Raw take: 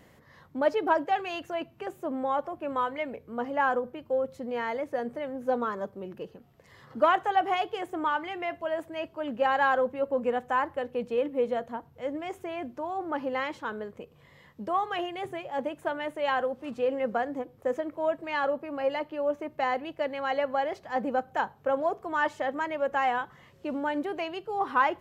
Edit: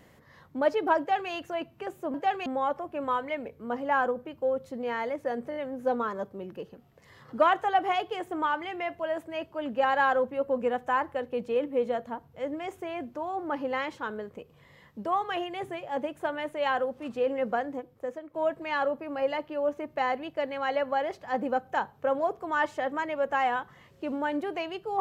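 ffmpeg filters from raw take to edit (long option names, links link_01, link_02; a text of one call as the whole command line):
ffmpeg -i in.wav -filter_complex "[0:a]asplit=7[link_01][link_02][link_03][link_04][link_05][link_06][link_07];[link_01]atrim=end=2.142[link_08];[link_02]atrim=start=0.988:end=1.312[link_09];[link_03]atrim=start=2.138:end=5.202[link_10];[link_04]atrim=start=5.178:end=5.202[link_11];[link_05]atrim=start=5.178:end=5.202[link_12];[link_06]atrim=start=5.178:end=17.96,asetpts=PTS-STARTPTS,afade=type=out:start_time=12.002:duration=0.78:silence=0.237137[link_13];[link_07]atrim=start=17.96,asetpts=PTS-STARTPTS,afade=type=in:duration=0.004:curve=hsin:silence=0.237137[link_14];[link_08][link_09]acrossfade=duration=0.004:curve1=hsin:curve2=hsin[link_15];[link_15][link_10]acrossfade=duration=0.004:curve1=hsin:curve2=hsin[link_16];[link_16][link_11]acrossfade=duration=0.004:curve1=hsin:curve2=hsin[link_17];[link_17][link_12]acrossfade=duration=0.004:curve1=hsin:curve2=hsin[link_18];[link_13][link_14]concat=n=2:v=0:a=1[link_19];[link_18][link_19]acrossfade=duration=0.004:curve1=hsin:curve2=hsin" out.wav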